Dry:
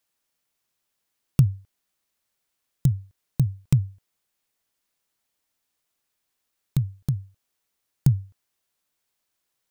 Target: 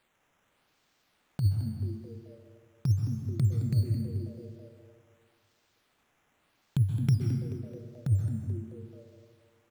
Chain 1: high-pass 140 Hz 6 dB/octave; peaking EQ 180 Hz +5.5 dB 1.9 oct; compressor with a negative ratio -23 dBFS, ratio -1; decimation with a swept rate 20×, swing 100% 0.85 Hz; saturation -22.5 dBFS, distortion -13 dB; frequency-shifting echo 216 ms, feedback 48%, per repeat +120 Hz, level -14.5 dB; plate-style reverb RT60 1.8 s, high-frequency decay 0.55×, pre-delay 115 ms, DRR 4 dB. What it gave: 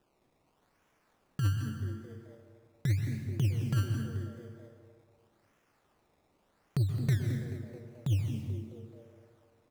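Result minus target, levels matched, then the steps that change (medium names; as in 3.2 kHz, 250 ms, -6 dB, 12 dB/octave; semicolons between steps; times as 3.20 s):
saturation: distortion +16 dB; decimation with a swept rate: distortion +9 dB
change: decimation with a swept rate 7×, swing 100% 0.85 Hz; change: saturation -12 dBFS, distortion -29 dB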